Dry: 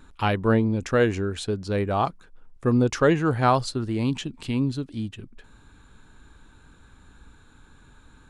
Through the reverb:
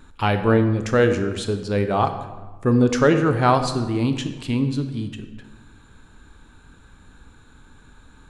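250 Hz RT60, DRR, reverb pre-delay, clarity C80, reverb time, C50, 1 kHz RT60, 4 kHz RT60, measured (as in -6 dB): 1.5 s, 7.5 dB, 18 ms, 11.0 dB, 1.3 s, 9.0 dB, 1.2 s, 0.80 s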